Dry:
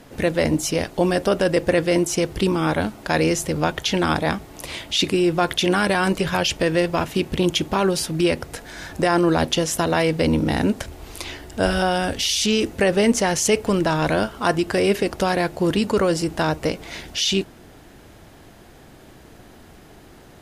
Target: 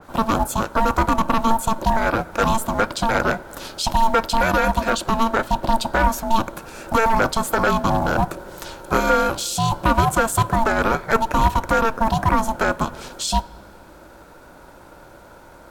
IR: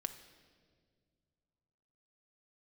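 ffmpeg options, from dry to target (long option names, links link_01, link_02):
-filter_complex "[0:a]highpass=42,asetrate=57330,aresample=44100,equalizer=frequency=125:width_type=o:width=0.33:gain=8,equalizer=frequency=500:width_type=o:width=0.33:gain=6,equalizer=frequency=1000:width_type=o:width=0.33:gain=11,equalizer=frequency=2500:width_type=o:width=0.33:gain=-11,equalizer=frequency=5000:width_type=o:width=0.33:gain=-4,acrossover=split=600[link_01][link_02];[link_01]acrusher=bits=6:mode=log:mix=0:aa=0.000001[link_03];[link_03][link_02]amix=inputs=2:normalize=0,aeval=exprs='val(0)*sin(2*PI*450*n/s)':channel_layout=same,aeval=exprs='clip(val(0),-1,0.251)':channel_layout=same,asplit=2[link_04][link_05];[1:a]atrim=start_sample=2205[link_06];[link_05][link_06]afir=irnorm=-1:irlink=0,volume=-7dB[link_07];[link_04][link_07]amix=inputs=2:normalize=0,adynamicequalizer=threshold=0.0224:dfrequency=2900:dqfactor=0.7:tfrequency=2900:tqfactor=0.7:attack=5:release=100:ratio=0.375:range=1.5:mode=cutabove:tftype=highshelf,volume=-1dB"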